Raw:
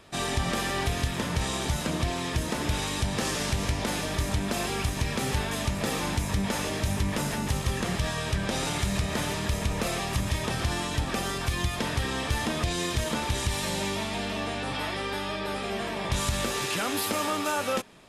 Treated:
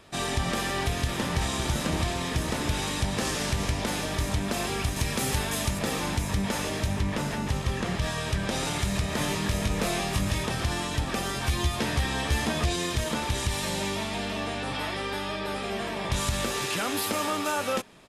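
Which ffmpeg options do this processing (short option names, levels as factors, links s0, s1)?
-filter_complex "[0:a]asplit=2[s0][s1];[s1]afade=t=in:st=0.52:d=0.01,afade=t=out:st=1.57:d=0.01,aecho=0:1:560|1120|1680|2240|2800|3360|3920|4480|5040|5600|6160|6720:0.421697|0.316272|0.237204|0.177903|0.133427|0.100071|0.0750529|0.0562897|0.0422173|0.0316629|0.0237472|0.0178104[s2];[s0][s2]amix=inputs=2:normalize=0,asettb=1/sr,asplit=3[s3][s4][s5];[s3]atrim=end=4.964[s6];[s4]atrim=start=4.96:end=5.79,asetpts=PTS-STARTPTS,afade=t=in:d=0.004:c=qsin,afade=t=out:st=0.826:d=0.004:c=qsin,highshelf=f=6900:g=9[s7];[s5]atrim=start=5.786[s8];[s6][s7]acrossfade=d=0.004:c1=hsin:c2=qsin[s9];[s9][s8]acrossfade=d=0.004:c1=qsin:c2=hsin,asettb=1/sr,asplit=3[s10][s11][s12];[s10]atrim=end=6.864[s13];[s11]atrim=start=6.86:end=8.02,asetpts=PTS-STARTPTS,afade=t=in:d=0.004:c=qsin,afade=t=out:st=1.156:d=0.004:c=qsin,highshelf=f=7200:g=-9.5[s14];[s12]atrim=start=8.016[s15];[s13][s14]acrossfade=d=0.004:c1=hsin:c2=qsin[s16];[s16][s15]acrossfade=d=0.004:c1=qsin:c2=hsin,asettb=1/sr,asplit=3[s17][s18][s19];[s17]atrim=end=9.184[s20];[s18]atrim=start=9.18:end=10.44,asetpts=PTS-STARTPTS,afade=t=in:d=0.004:c=qsin,afade=t=out:st=1.256:d=0.004:c=qsin,asplit=2[s21][s22];[s22]adelay=20,volume=0.631[s23];[s21][s23]amix=inputs=2:normalize=0,atrim=end_sample=55566[s24];[s19]atrim=start=10.436[s25];[s20][s24]acrossfade=d=0.004:c1=hsin:c2=qsin[s26];[s26][s25]acrossfade=d=0.004:c1=qsin:c2=hsin,asettb=1/sr,asplit=3[s27][s28][s29];[s27]atrim=end=11.334[s30];[s28]atrim=start=11.33:end=12.76,asetpts=PTS-STARTPTS,afade=t=in:d=0.004:c=qsin,afade=t=out:st=1.426:d=0.004:c=qsin,asplit=2[s31][s32];[s32]adelay=14,volume=0.631[s33];[s31][s33]amix=inputs=2:normalize=0,atrim=end_sample=63063[s34];[s29]atrim=start=12.756[s35];[s30][s34]acrossfade=d=0.004:c1=hsin:c2=qsin[s36];[s36][s35]acrossfade=d=0.004:c1=qsin:c2=hsin"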